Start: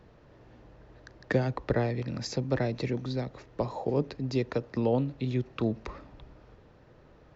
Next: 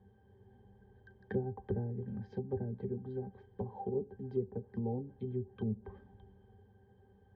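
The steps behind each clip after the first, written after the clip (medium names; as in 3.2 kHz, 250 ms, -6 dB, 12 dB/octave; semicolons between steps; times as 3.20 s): pitch-class resonator G, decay 0.11 s; low-pass that closes with the level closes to 580 Hz, closed at -35.5 dBFS; trim +2 dB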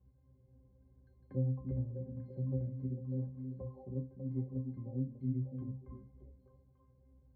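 pitch-class resonator C, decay 0.32 s; repeats whose band climbs or falls 297 ms, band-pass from 200 Hz, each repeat 1.4 oct, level -2 dB; trim +11 dB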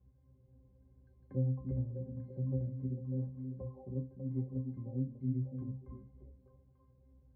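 distance through air 290 m; trim +1 dB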